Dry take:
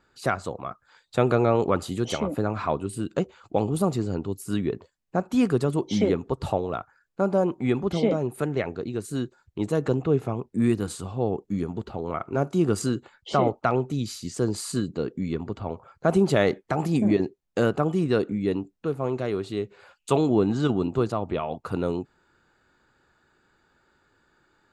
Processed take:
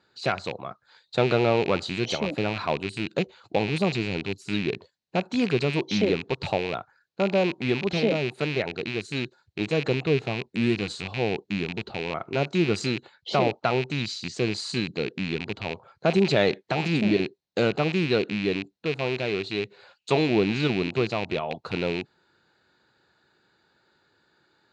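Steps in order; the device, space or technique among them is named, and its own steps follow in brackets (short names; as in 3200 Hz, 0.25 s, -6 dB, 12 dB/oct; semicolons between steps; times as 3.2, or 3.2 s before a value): car door speaker with a rattle (rattling part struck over -32 dBFS, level -21 dBFS; speaker cabinet 110–6600 Hz, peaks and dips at 260 Hz -4 dB, 1200 Hz -5 dB, 4100 Hz +10 dB)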